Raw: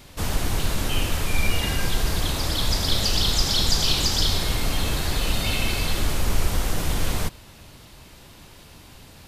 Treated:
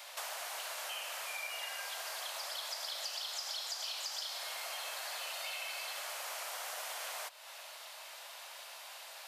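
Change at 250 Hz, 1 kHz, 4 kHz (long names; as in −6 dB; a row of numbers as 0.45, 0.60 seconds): below −40 dB, −11.5 dB, −15.0 dB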